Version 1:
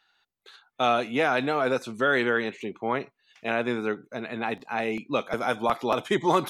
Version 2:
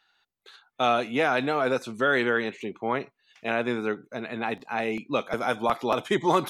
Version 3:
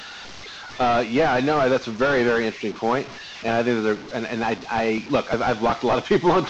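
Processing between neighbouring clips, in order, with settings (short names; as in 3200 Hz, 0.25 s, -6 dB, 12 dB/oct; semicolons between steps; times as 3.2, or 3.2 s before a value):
nothing audible
delta modulation 32 kbps, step -38.5 dBFS; gain +7 dB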